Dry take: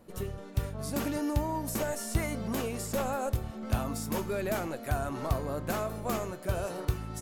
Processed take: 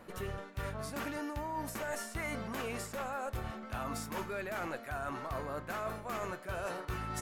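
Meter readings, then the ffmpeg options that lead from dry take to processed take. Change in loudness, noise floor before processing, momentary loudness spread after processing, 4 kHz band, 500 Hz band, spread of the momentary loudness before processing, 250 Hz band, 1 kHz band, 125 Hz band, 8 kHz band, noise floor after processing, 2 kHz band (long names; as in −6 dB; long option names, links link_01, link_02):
−6.0 dB, −45 dBFS, 2 LU, −4.5 dB, −6.5 dB, 3 LU, −8.5 dB, −2.5 dB, −10.0 dB, −7.0 dB, −49 dBFS, 0.0 dB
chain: -af "equalizer=frequency=1600:width_type=o:width=2.3:gain=11.5,areverse,acompressor=threshold=-35dB:ratio=12,areverse"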